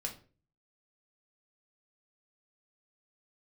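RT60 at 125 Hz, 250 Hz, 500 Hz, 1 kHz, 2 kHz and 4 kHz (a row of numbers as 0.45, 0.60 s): 0.65, 0.50, 0.45, 0.35, 0.35, 0.30 s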